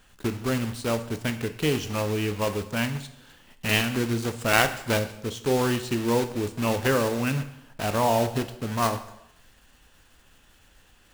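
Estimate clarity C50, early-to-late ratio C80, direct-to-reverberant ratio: 12.0 dB, 14.5 dB, 8.5 dB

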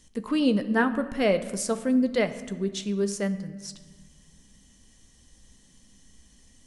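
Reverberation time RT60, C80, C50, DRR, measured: 1.3 s, 14.5 dB, 12.5 dB, 10.0 dB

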